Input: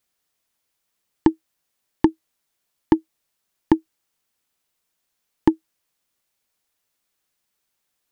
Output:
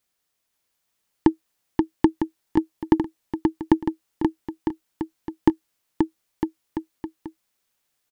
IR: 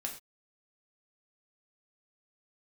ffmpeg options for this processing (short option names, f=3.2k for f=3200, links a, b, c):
-af "aecho=1:1:530|954|1293|1565|1782:0.631|0.398|0.251|0.158|0.1,volume=-1dB"